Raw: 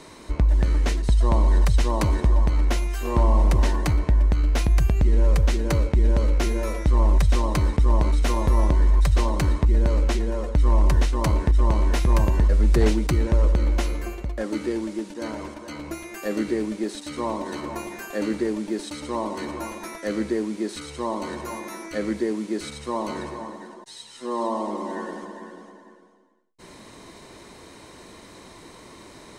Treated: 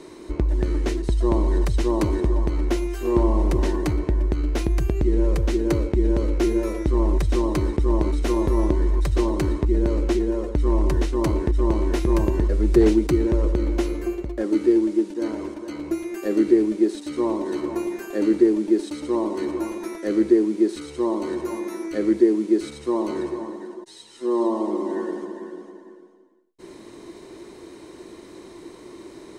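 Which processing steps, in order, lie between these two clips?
bell 350 Hz +14.5 dB 0.63 oct; gain -3.5 dB

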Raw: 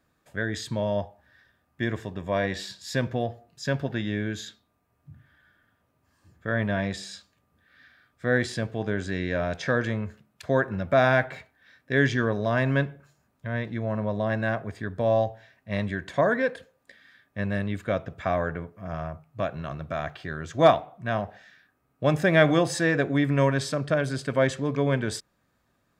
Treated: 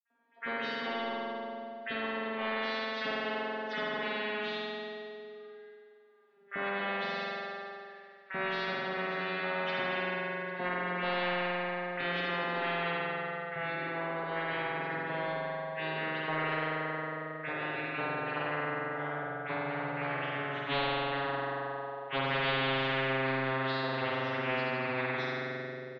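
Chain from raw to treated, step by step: vocoder on a gliding note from A#3, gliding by -11 st; HPF 450 Hz 12 dB/oct; gate -53 dBFS, range -11 dB; high shelf 3800 Hz -8.5 dB; comb 7.4 ms, depth 99%; in parallel at -8 dB: soft clip -18.5 dBFS, distortion -13 dB; on the sum: reverb RT60 2.0 s, pre-delay 46 ms; spectral compressor 4:1

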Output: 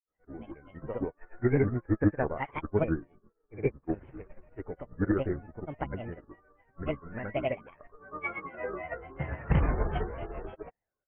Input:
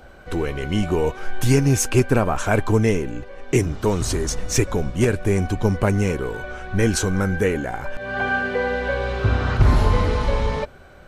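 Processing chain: rippled Chebyshev low-pass 2200 Hz, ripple 6 dB; grains 0.125 s, grains 20/s, pitch spread up and down by 7 st; upward expander 2.5:1, over -44 dBFS

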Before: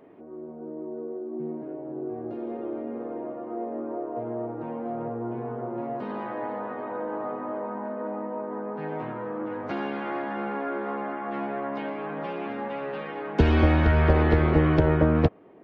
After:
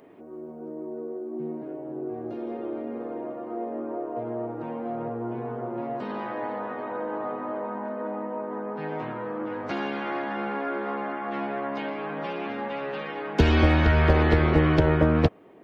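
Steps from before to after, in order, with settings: high shelf 3100 Hz +11 dB

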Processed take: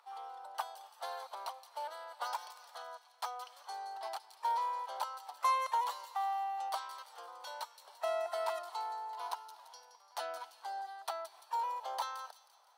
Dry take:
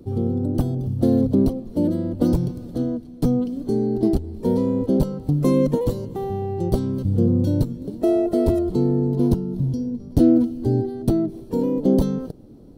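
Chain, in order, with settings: steep high-pass 880 Hz 48 dB/oct; tilt -4.5 dB/oct; thin delay 0.171 s, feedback 47%, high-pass 4300 Hz, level -7.5 dB; gain +7 dB

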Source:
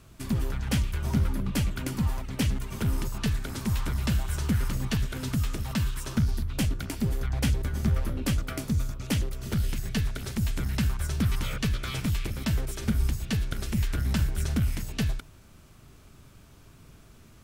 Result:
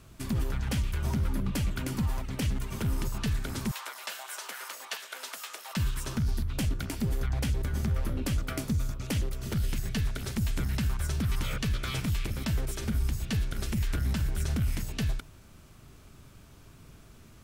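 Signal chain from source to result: 3.71–5.77 HPF 590 Hz 24 dB/oct; limiter -21 dBFS, peak gain reduction 8 dB

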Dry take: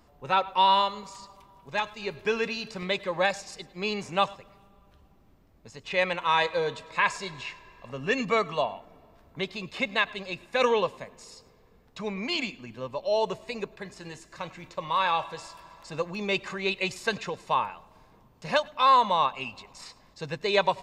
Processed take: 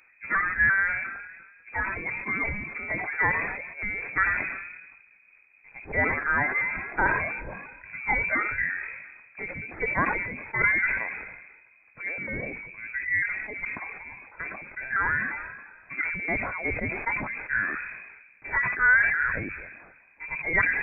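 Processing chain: repeated pitch sweeps -3.5 st, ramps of 0.348 s; inverted band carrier 2500 Hz; sustainer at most 43 dB/s

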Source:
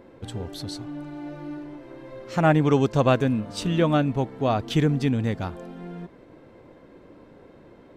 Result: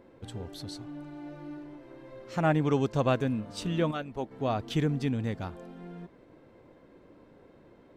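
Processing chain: 3.91–4.31 harmonic-percussive split harmonic -13 dB; gain -6.5 dB

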